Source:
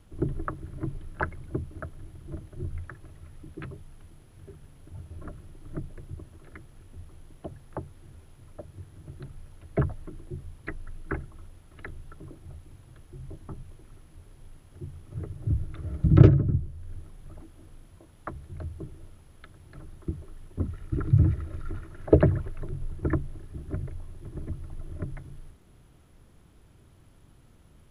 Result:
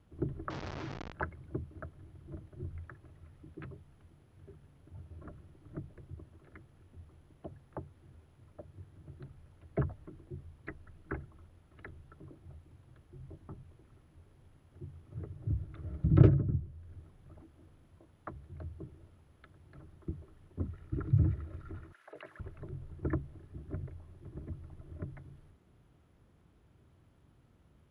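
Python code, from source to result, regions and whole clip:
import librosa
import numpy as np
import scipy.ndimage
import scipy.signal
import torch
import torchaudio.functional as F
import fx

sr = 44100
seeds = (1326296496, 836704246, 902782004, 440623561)

y = fx.chain(x, sr, fx.delta_mod(bps=32000, step_db=-31.5),
    fx.low_shelf(hz=410.0, db=-7.0),
    fx.env_flatten(amount_pct=100), at=(0.5, 1.12))
y = fx.chain(y, sr, fx.highpass(hz=1400.0, slope=12),
    fx.over_compress(threshold_db=-39.0, ratio=-1.0), at=(21.92, 22.4))
y = scipy.signal.sosfilt(scipy.signal.butter(2, 50.0, 'highpass', fs=sr, output='sos'), y)
y = fx.high_shelf(y, sr, hz=4400.0, db=-11.0)
y = y * librosa.db_to_amplitude(-6.5)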